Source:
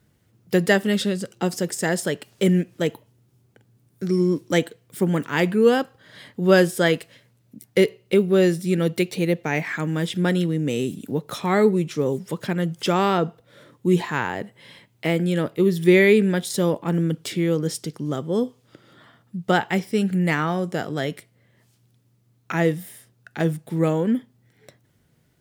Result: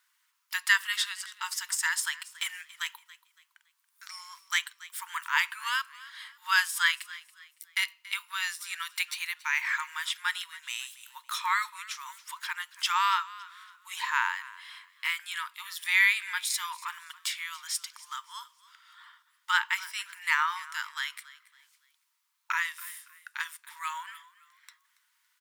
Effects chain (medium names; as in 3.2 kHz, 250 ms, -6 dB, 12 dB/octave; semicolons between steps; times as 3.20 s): brick-wall FIR high-pass 890 Hz; on a send: frequency-shifting echo 280 ms, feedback 34%, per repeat +48 Hz, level -19 dB